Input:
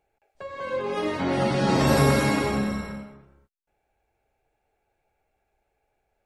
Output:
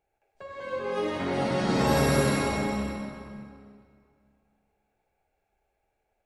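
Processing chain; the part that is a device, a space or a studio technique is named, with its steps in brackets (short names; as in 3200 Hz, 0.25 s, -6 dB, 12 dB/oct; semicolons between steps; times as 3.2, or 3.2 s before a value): stairwell (reverb RT60 2.2 s, pre-delay 47 ms, DRR 1 dB); gain -5 dB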